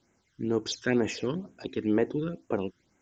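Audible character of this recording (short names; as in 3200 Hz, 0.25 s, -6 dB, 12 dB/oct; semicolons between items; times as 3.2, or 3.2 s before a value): a quantiser's noise floor 12-bit, dither triangular; phasing stages 12, 2.1 Hz, lowest notch 720–4400 Hz; SBC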